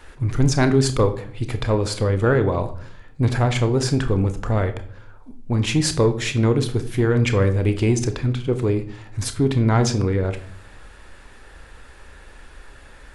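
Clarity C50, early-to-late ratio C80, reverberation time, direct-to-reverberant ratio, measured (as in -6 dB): 13.5 dB, 16.5 dB, 0.60 s, 8.5 dB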